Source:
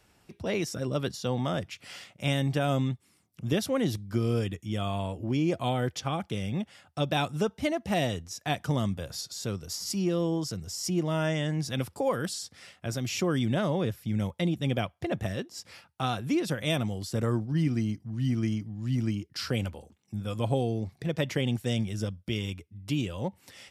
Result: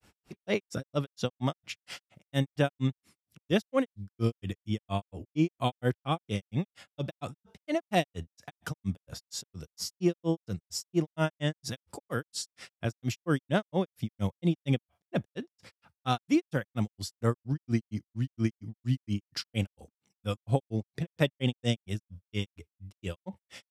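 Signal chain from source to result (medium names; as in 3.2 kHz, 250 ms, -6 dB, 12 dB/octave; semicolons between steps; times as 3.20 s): granulator 139 ms, grains 4.3 per s, spray 36 ms, pitch spread up and down by 0 st; trim +4 dB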